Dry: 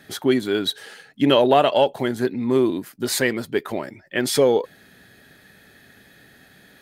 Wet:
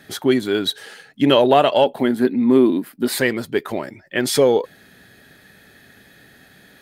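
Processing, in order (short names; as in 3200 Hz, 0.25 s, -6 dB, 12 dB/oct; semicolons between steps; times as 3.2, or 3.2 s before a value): 1.84–3.19 fifteen-band EQ 100 Hz -11 dB, 250 Hz +7 dB, 6300 Hz -10 dB; gain +2 dB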